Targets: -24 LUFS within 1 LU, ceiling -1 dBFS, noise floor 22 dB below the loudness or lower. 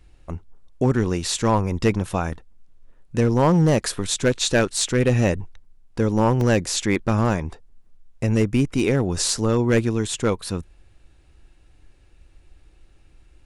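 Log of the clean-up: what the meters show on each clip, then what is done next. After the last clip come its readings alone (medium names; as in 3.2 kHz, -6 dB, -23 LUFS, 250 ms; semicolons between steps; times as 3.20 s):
clipped samples 0.6%; clipping level -10.5 dBFS; dropouts 1; longest dropout 1.9 ms; loudness -21.5 LUFS; peak level -10.5 dBFS; loudness target -24.0 LUFS
-> clip repair -10.5 dBFS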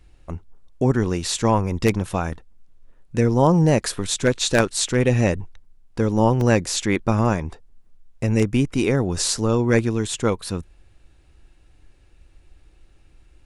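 clipped samples 0.0%; dropouts 1; longest dropout 1.9 ms
-> interpolate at 6.41 s, 1.9 ms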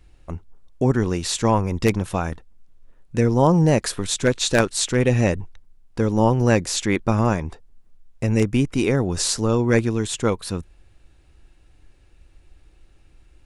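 dropouts 0; loudness -21.0 LUFS; peak level -1.5 dBFS; loudness target -24.0 LUFS
-> trim -3 dB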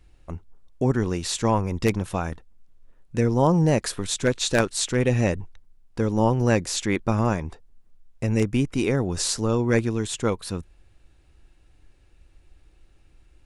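loudness -24.0 LUFS; peak level -4.5 dBFS; noise floor -57 dBFS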